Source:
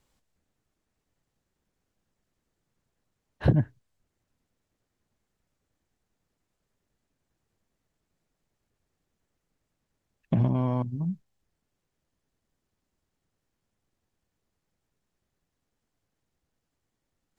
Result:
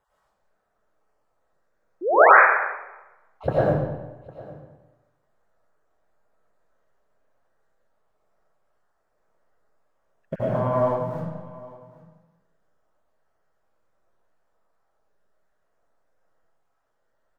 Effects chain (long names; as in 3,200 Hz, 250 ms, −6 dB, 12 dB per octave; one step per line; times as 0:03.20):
time-frequency cells dropped at random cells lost 29%
in parallel at −7.5 dB: comparator with hysteresis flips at −29.5 dBFS
on the sum: single-tap delay 806 ms −20 dB
sound drawn into the spectrogram rise, 0:02.01–0:02.31, 310–2,600 Hz −26 dBFS
flat-topped bell 870 Hz +14.5 dB 2.3 octaves
convolution reverb RT60 1.1 s, pre-delay 60 ms, DRR −8.5 dB
dynamic equaliser 1,600 Hz, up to +6 dB, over −25 dBFS, Q 2.1
level −9.5 dB